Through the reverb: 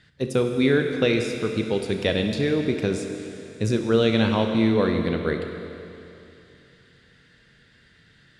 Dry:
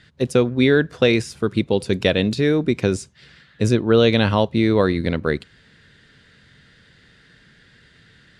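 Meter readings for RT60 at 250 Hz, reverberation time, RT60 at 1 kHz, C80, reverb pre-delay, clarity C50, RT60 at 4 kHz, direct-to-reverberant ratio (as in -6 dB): 2.9 s, 2.9 s, 2.9 s, 6.0 dB, 23 ms, 5.0 dB, 2.9 s, 4.0 dB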